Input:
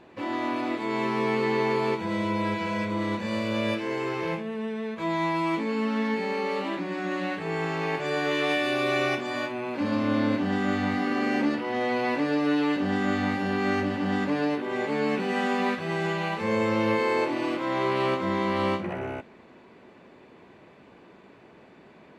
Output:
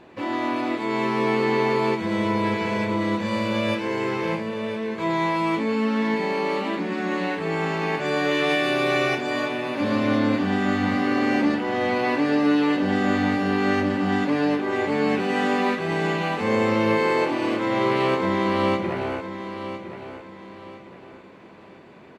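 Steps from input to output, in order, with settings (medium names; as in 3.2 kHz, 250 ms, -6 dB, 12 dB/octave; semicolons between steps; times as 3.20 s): feedback delay 1009 ms, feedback 34%, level -11 dB; trim +3.5 dB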